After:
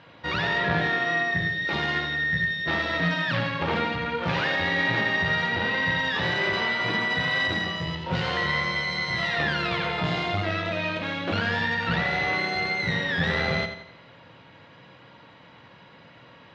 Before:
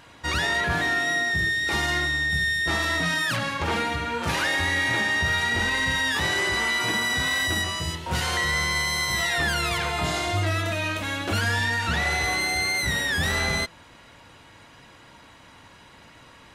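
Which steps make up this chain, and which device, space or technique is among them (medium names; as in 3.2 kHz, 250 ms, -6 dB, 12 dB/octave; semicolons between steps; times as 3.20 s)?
5.48–5.99 s: low-pass 5.1 kHz; analogue delay pedal into a guitar amplifier (bucket-brigade echo 86 ms, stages 4096, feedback 42%, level -8.5 dB; valve stage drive 15 dB, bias 0.75; cabinet simulation 110–4200 Hz, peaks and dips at 120 Hz +6 dB, 170 Hz +7 dB, 520 Hz +6 dB); trim +2.5 dB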